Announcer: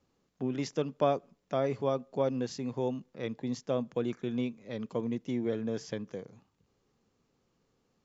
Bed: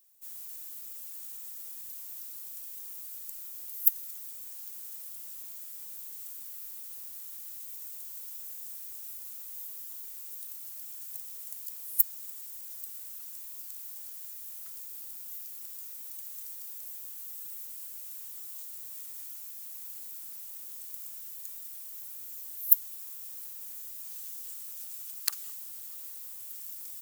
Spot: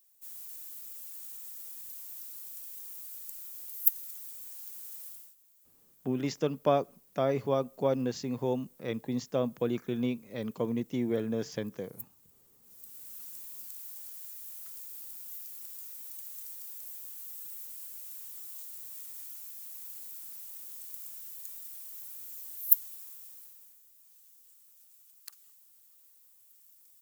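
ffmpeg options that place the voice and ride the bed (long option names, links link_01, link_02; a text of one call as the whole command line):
ffmpeg -i stem1.wav -i stem2.wav -filter_complex "[0:a]adelay=5650,volume=1.5dB[link_01];[1:a]volume=17.5dB,afade=type=out:start_time=5.07:duration=0.28:silence=0.112202,afade=type=in:start_time=12.61:duration=0.59:silence=0.112202,afade=type=out:start_time=22.76:duration=1.03:silence=0.158489[link_02];[link_01][link_02]amix=inputs=2:normalize=0" out.wav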